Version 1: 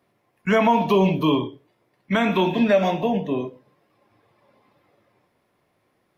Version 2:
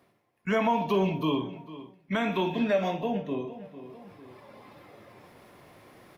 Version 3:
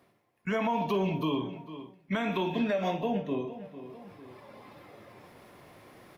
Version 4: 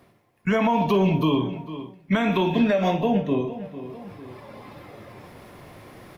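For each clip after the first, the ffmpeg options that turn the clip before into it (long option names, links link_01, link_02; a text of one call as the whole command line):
ffmpeg -i in.wav -filter_complex "[0:a]asplit=2[link_01][link_02];[link_02]adelay=50,volume=-14dB[link_03];[link_01][link_03]amix=inputs=2:normalize=0,asplit=2[link_04][link_05];[link_05]adelay=450,lowpass=frequency=3800:poles=1,volume=-20dB,asplit=2[link_06][link_07];[link_07]adelay=450,lowpass=frequency=3800:poles=1,volume=0.22[link_08];[link_04][link_06][link_08]amix=inputs=3:normalize=0,areverse,acompressor=mode=upward:threshold=-27dB:ratio=2.5,areverse,volume=-7.5dB" out.wav
ffmpeg -i in.wav -af "alimiter=limit=-20.5dB:level=0:latency=1:release=125" out.wav
ffmpeg -i in.wav -af "lowshelf=frequency=130:gain=9,volume=7dB" out.wav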